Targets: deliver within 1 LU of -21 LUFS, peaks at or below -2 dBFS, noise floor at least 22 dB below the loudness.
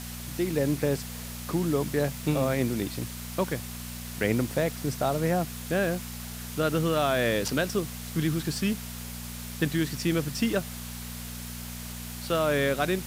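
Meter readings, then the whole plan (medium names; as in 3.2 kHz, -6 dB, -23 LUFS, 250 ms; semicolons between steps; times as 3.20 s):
hum 60 Hz; highest harmonic 240 Hz; hum level -37 dBFS; noise floor -39 dBFS; noise floor target -51 dBFS; loudness -29.0 LUFS; peak level -10.5 dBFS; loudness target -21.0 LUFS
-> de-hum 60 Hz, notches 4; noise print and reduce 12 dB; trim +8 dB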